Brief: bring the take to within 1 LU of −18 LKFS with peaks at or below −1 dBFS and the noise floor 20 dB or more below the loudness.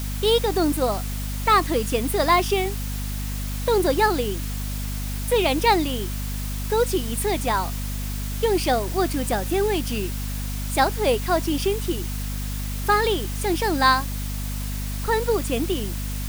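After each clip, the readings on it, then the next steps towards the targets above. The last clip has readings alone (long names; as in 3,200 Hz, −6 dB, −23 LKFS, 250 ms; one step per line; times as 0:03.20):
mains hum 50 Hz; hum harmonics up to 250 Hz; level of the hum −26 dBFS; background noise floor −28 dBFS; target noise floor −44 dBFS; integrated loudness −23.5 LKFS; sample peak −5.5 dBFS; target loudness −18.0 LKFS
→ hum removal 50 Hz, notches 5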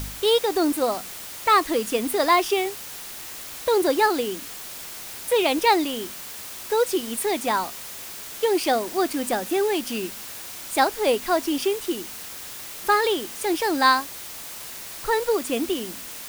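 mains hum none found; background noise floor −37 dBFS; target noise floor −44 dBFS
→ broadband denoise 7 dB, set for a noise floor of −37 dBFS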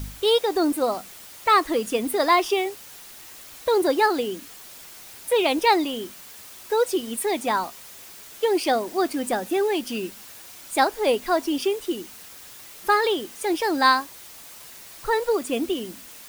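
background noise floor −44 dBFS; integrated loudness −23.5 LKFS; sample peak −5.5 dBFS; target loudness −18.0 LKFS
→ level +5.5 dB
brickwall limiter −1 dBFS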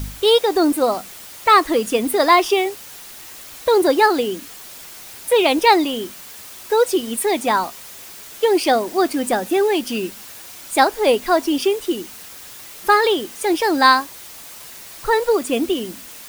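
integrated loudness −18.0 LKFS; sample peak −1.0 dBFS; background noise floor −38 dBFS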